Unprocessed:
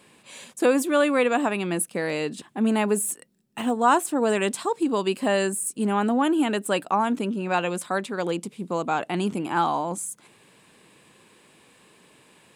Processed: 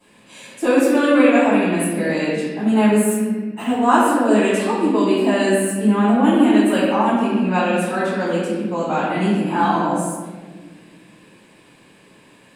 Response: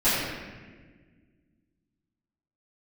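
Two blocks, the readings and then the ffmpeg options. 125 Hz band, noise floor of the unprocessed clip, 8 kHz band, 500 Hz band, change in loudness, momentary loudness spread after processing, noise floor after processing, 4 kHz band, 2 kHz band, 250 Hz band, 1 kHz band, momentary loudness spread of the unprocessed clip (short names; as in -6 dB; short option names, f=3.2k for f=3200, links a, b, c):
+9.0 dB, -57 dBFS, +0.5 dB, +6.0 dB, +7.0 dB, 9 LU, -50 dBFS, +3.5 dB, +6.0 dB, +9.5 dB, +5.0 dB, 10 LU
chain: -filter_complex "[1:a]atrim=start_sample=2205[a];[0:a][a]afir=irnorm=-1:irlink=0,volume=-11dB"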